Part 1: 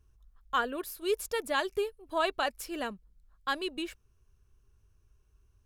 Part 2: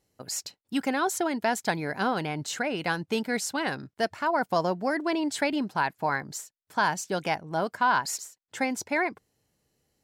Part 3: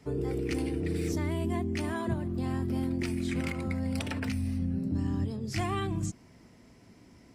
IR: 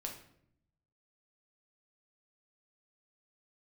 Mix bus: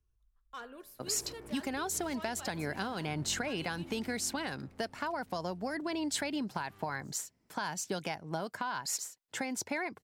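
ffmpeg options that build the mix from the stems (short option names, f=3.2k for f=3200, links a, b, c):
-filter_complex "[0:a]bandreject=f=81.72:t=h:w=4,bandreject=f=163.44:t=h:w=4,bandreject=f=245.16:t=h:w=4,bandreject=f=326.88:t=h:w=4,bandreject=f=408.6:t=h:w=4,bandreject=f=490.32:t=h:w=4,bandreject=f=572.04:t=h:w=4,bandreject=f=653.76:t=h:w=4,bandreject=f=735.48:t=h:w=4,bandreject=f=817.2:t=h:w=4,bandreject=f=898.92:t=h:w=4,bandreject=f=980.64:t=h:w=4,bandreject=f=1.06236k:t=h:w=4,bandreject=f=1.14408k:t=h:w=4,bandreject=f=1.2258k:t=h:w=4,bandreject=f=1.30752k:t=h:w=4,bandreject=f=1.38924k:t=h:w=4,bandreject=f=1.47096k:t=h:w=4,bandreject=f=1.55268k:t=h:w=4,bandreject=f=1.6344k:t=h:w=4,bandreject=f=1.71612k:t=h:w=4,bandreject=f=1.79784k:t=h:w=4,bandreject=f=1.87956k:t=h:w=4,bandreject=f=1.96128k:t=h:w=4,bandreject=f=2.043k:t=h:w=4,bandreject=f=2.12472k:t=h:w=4,bandreject=f=2.20644k:t=h:w=4,bandreject=f=2.28816k:t=h:w=4,bandreject=f=2.36988k:t=h:w=4,asoftclip=type=tanh:threshold=-26.5dB,volume=-12.5dB,asplit=2[a][b];[1:a]alimiter=limit=-21.5dB:level=0:latency=1:release=263,adelay=800,volume=0.5dB[c];[2:a]asoftclip=type=hard:threshold=-37.5dB,adelay=1000,volume=-8.5dB,afade=t=out:st=3.97:d=0.75:silence=0.281838[d];[b]apad=whole_len=367953[e];[d][e]sidechaincompress=threshold=-49dB:ratio=8:attack=16:release=219[f];[a][c][f]amix=inputs=3:normalize=0,acrossover=split=150|3000[g][h][i];[h]acompressor=threshold=-33dB:ratio=6[j];[g][j][i]amix=inputs=3:normalize=0"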